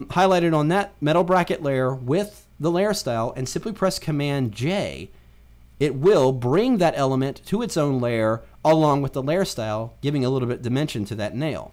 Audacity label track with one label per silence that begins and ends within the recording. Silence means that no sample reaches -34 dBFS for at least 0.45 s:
5.060000	5.810000	silence